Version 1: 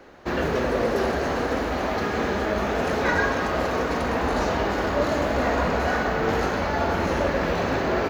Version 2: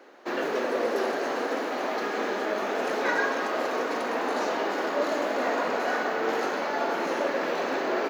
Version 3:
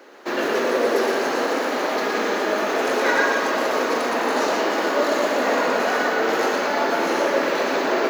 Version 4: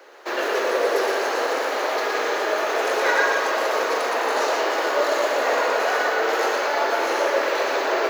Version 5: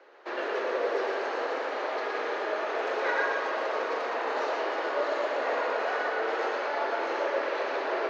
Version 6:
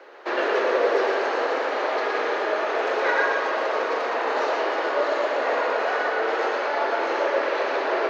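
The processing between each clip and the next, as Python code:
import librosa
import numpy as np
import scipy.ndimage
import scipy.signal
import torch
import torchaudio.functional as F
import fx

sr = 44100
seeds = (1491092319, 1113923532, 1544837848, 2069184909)

y1 = scipy.signal.sosfilt(scipy.signal.butter(4, 270.0, 'highpass', fs=sr, output='sos'), x)
y1 = y1 * 10.0 ** (-3.0 / 20.0)
y2 = fx.high_shelf(y1, sr, hz=4700.0, db=6.0)
y2 = fx.notch(y2, sr, hz=740.0, q=24.0)
y2 = y2 + 10.0 ** (-3.5 / 20.0) * np.pad(y2, (int(118 * sr / 1000.0), 0))[:len(y2)]
y2 = y2 * 10.0 ** (5.0 / 20.0)
y3 = scipy.signal.sosfilt(scipy.signal.butter(4, 390.0, 'highpass', fs=sr, output='sos'), y2)
y4 = fx.air_absorb(y3, sr, metres=190.0)
y4 = y4 * 10.0 ** (-7.0 / 20.0)
y5 = fx.rider(y4, sr, range_db=5, speed_s=2.0)
y5 = y5 * 10.0 ** (6.0 / 20.0)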